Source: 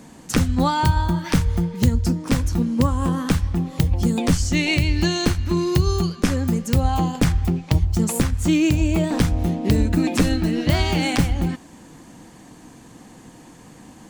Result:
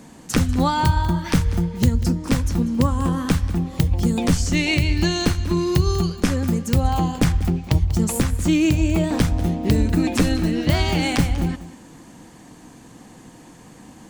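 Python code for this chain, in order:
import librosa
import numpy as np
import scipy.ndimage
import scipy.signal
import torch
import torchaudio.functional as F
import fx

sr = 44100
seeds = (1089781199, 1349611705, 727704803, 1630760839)

y = x + 10.0 ** (-16.0 / 20.0) * np.pad(x, (int(192 * sr / 1000.0), 0))[:len(x)]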